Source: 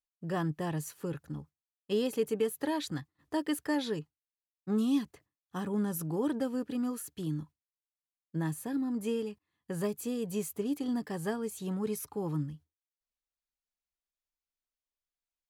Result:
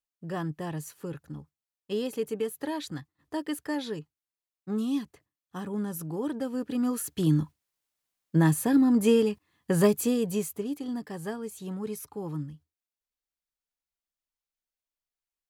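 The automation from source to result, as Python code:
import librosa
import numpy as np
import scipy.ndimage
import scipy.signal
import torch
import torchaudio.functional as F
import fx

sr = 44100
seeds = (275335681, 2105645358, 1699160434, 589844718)

y = fx.gain(x, sr, db=fx.line((6.37, -0.5), (7.31, 11.5), (9.94, 11.5), (10.75, -1.0)))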